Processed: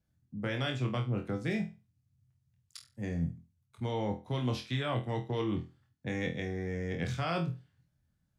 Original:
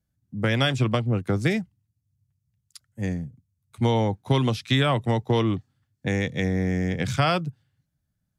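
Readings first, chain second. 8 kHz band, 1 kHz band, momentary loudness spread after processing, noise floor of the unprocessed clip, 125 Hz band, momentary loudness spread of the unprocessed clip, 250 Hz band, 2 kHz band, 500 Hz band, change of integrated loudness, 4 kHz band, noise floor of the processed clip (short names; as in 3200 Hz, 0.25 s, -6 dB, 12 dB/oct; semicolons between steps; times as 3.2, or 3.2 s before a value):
-11.5 dB, -11.0 dB, 12 LU, -78 dBFS, -10.0 dB, 10 LU, -9.5 dB, -10.0 dB, -9.5 dB, -10.0 dB, -12.0 dB, -77 dBFS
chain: high shelf 7100 Hz -8.5 dB; reverse; compressor 6:1, threshold -32 dBFS, peak gain reduction 15 dB; reverse; flutter echo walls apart 4.1 m, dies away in 0.29 s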